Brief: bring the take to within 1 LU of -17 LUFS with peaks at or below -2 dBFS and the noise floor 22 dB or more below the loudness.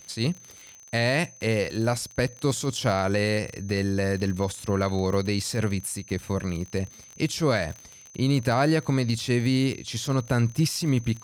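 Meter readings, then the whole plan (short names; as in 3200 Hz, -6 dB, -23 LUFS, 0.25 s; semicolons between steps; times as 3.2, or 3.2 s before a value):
ticks 40/s; steady tone 6200 Hz; tone level -47 dBFS; loudness -26.0 LUFS; peak -11.5 dBFS; loudness target -17.0 LUFS
-> de-click; notch 6200 Hz, Q 30; gain +9 dB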